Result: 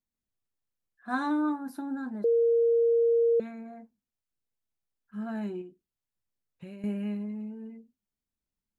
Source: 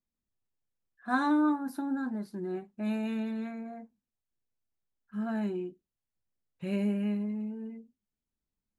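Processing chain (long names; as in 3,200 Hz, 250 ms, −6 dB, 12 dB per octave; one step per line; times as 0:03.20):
0:02.24–0:03.40: beep over 465 Hz −18 dBFS
0:05.61–0:06.84: downward compressor 16 to 1, threshold −39 dBFS, peak gain reduction 13.5 dB
level −2 dB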